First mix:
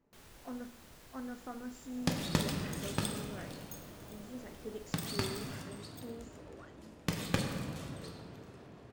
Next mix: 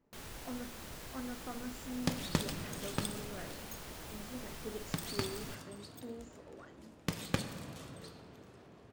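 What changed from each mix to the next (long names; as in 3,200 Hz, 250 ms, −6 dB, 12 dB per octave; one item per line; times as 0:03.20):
first sound +9.0 dB
second sound: send −8.0 dB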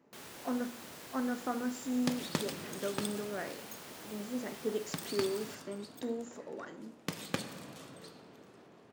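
speech +9.5 dB
master: add high-pass filter 180 Hz 12 dB per octave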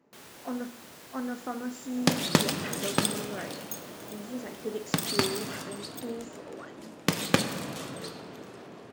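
second sound +12.0 dB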